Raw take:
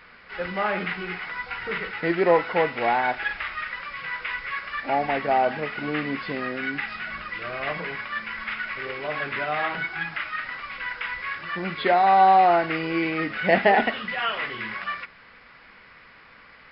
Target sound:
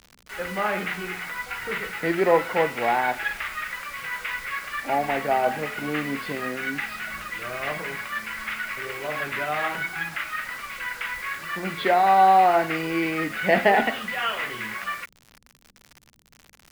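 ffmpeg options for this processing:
ffmpeg -i in.wav -filter_complex "[0:a]bandreject=frequency=86.94:width_type=h:width=4,bandreject=frequency=173.88:width_type=h:width=4,bandreject=frequency=260.82:width_type=h:width=4,bandreject=frequency=347.76:width_type=h:width=4,bandreject=frequency=434.7:width_type=h:width=4,bandreject=frequency=521.64:width_type=h:width=4,bandreject=frequency=608.58:width_type=h:width=4,bandreject=frequency=695.52:width_type=h:width=4,bandreject=frequency=782.46:width_type=h:width=4,bandreject=frequency=869.4:width_type=h:width=4,bandreject=frequency=956.34:width_type=h:width=4,bandreject=frequency=1043.28:width_type=h:width=4,bandreject=frequency=1130.22:width_type=h:width=4,acrossover=split=250[link_01][link_02];[link_02]acrusher=bits=6:mix=0:aa=0.000001[link_03];[link_01][link_03]amix=inputs=2:normalize=0" out.wav

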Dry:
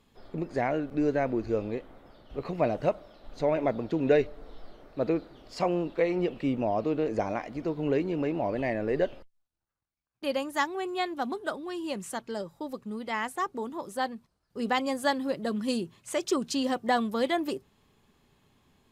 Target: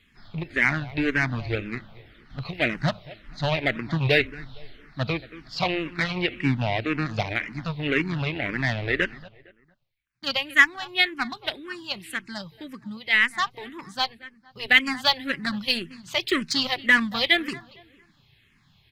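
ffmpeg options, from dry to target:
ffmpeg -i in.wav -filter_complex "[0:a]asplit=2[link_01][link_02];[link_02]acrusher=bits=3:mix=0:aa=0.5,volume=-4.5dB[link_03];[link_01][link_03]amix=inputs=2:normalize=0,equalizer=frequency=125:width_type=o:width=1:gain=8,equalizer=frequency=250:width_type=o:width=1:gain=-3,equalizer=frequency=500:width_type=o:width=1:gain=-11,equalizer=frequency=1000:width_type=o:width=1:gain=-4,equalizer=frequency=2000:width_type=o:width=1:gain=10,equalizer=frequency=4000:width_type=o:width=1:gain=8,equalizer=frequency=8000:width_type=o:width=1:gain=-7,asplit=2[link_04][link_05];[link_05]adelay=229,lowpass=frequency=2600:poles=1,volume=-18dB,asplit=2[link_06][link_07];[link_07]adelay=229,lowpass=frequency=2600:poles=1,volume=0.38,asplit=2[link_08][link_09];[link_09]adelay=229,lowpass=frequency=2600:poles=1,volume=0.38[link_10];[link_04][link_06][link_08][link_10]amix=inputs=4:normalize=0,asplit=2[link_11][link_12];[link_12]afreqshift=-1.9[link_13];[link_11][link_13]amix=inputs=2:normalize=1,volume=4.5dB" out.wav

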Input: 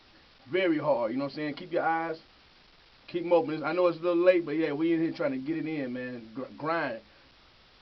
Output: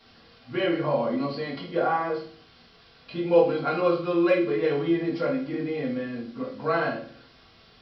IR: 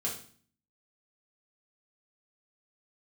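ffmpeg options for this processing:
-filter_complex "[0:a]bandreject=frequency=2300:width=17[link_01];[1:a]atrim=start_sample=2205[link_02];[link_01][link_02]afir=irnorm=-1:irlink=0"

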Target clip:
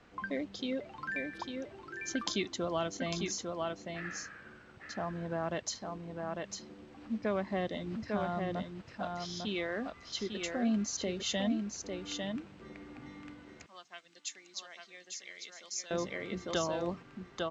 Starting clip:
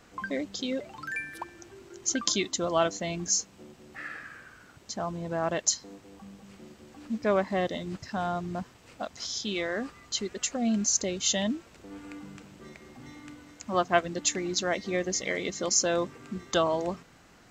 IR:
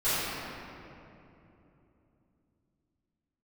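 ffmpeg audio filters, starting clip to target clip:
-filter_complex "[0:a]lowpass=3900,aecho=1:1:850:0.531,acrossover=split=260|3000[link_01][link_02][link_03];[link_02]acompressor=threshold=-29dB:ratio=3[link_04];[link_01][link_04][link_03]amix=inputs=3:normalize=0,asettb=1/sr,asplit=3[link_05][link_06][link_07];[link_05]atrim=end=13.664[link_08];[link_06]atrim=start=13.66:end=15.91,asetpts=PTS-STARTPTS,afade=type=in:duration=0.004:curve=qsin,afade=type=out:start_time=2.246:duration=0.004:curve=qsin,aderivative[link_09];[link_07]atrim=start=15.906[link_10];[link_08][link_09]acrossfade=duration=0.004:curve1=hsin:curve2=qsin[link_11];[link_11][link_10]acrossfade=duration=0.004:curve1=qsin:curve2=hsin,volume=-3.5dB"

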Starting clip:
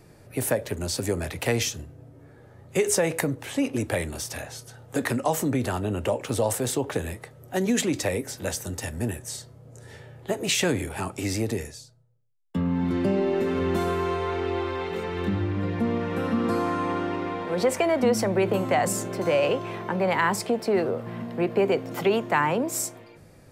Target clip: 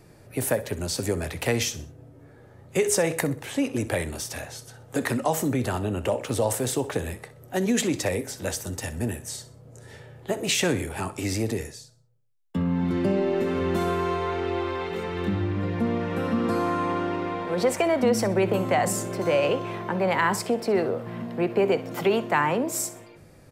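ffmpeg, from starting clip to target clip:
ffmpeg -i in.wav -af "aecho=1:1:63|126|189:0.158|0.0571|0.0205" out.wav

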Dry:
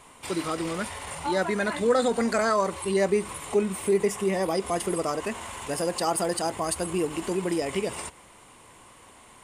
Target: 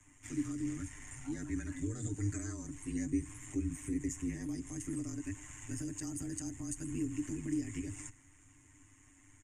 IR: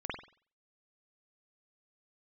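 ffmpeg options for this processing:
-filter_complex "[0:a]tremolo=f=100:d=0.889,aecho=1:1:6.4:0.77,acrossover=split=210|470|3800[link_01][link_02][link_03][link_04];[link_03]acompressor=threshold=-38dB:ratio=6[link_05];[link_01][link_02][link_05][link_04]amix=inputs=4:normalize=0,afreqshift=-29,firequalizer=gain_entry='entry(100,0);entry(190,-21);entry(280,-3);entry(460,-29);entry(680,-26);entry(1200,-21);entry(1800,-9);entry(4200,-29);entry(6600,-1);entry(9700,-19)':delay=0.05:min_phase=1,volume=2dB"

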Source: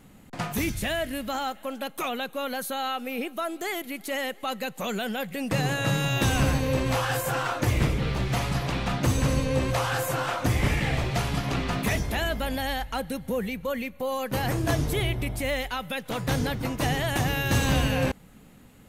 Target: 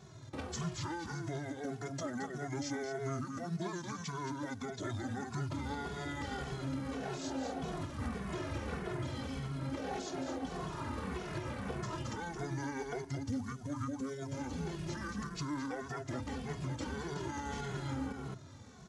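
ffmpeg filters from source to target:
ffmpeg -i in.wav -filter_complex "[0:a]acrusher=bits=6:mode=log:mix=0:aa=0.000001,acompressor=threshold=-29dB:ratio=8,bandreject=frequency=60:width_type=h:width=6,bandreject=frequency=120:width_type=h:width=6,bandreject=frequency=180:width_type=h:width=6,bandreject=frequency=240:width_type=h:width=6,bandreject=frequency=300:width_type=h:width=6,bandreject=frequency=360:width_type=h:width=6,bandreject=frequency=420:width_type=h:width=6,bandreject=frequency=480:width_type=h:width=6,bandreject=frequency=540:width_type=h:width=6,bandreject=frequency=600:width_type=h:width=6,asetrate=22696,aresample=44100,atempo=1.94306,highpass=160,lowshelf=frequency=230:gain=9,aecho=1:1:219:0.501,alimiter=level_in=6.5dB:limit=-24dB:level=0:latency=1:release=286,volume=-6.5dB,asplit=2[link_01][link_02];[link_02]adelay=2.3,afreqshift=-1.7[link_03];[link_01][link_03]amix=inputs=2:normalize=1,volume=3.5dB" out.wav

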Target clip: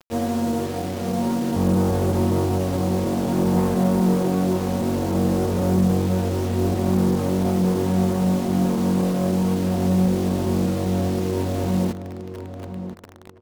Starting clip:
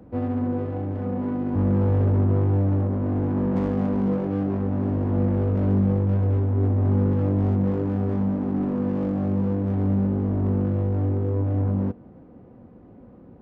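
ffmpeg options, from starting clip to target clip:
ffmpeg -i in.wav -filter_complex "[0:a]equalizer=frequency=860:width=0.46:gain=7,aecho=1:1:5.2:0.42,acrusher=bits=5:mix=0:aa=0.000001,asetrate=41625,aresample=44100,atempo=1.05946,asplit=2[link_01][link_02];[link_02]adelay=1019,lowpass=frequency=1500:poles=1,volume=-10dB,asplit=2[link_03][link_04];[link_04]adelay=1019,lowpass=frequency=1500:poles=1,volume=0.17[link_05];[link_01][link_03][link_05]amix=inputs=3:normalize=0" out.wav

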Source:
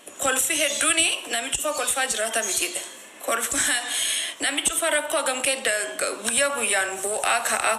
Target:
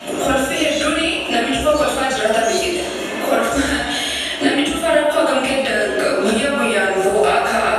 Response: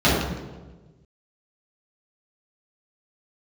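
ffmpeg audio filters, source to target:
-filter_complex "[0:a]acompressor=threshold=-37dB:ratio=5[link_01];[1:a]atrim=start_sample=2205[link_02];[link_01][link_02]afir=irnorm=-1:irlink=0"

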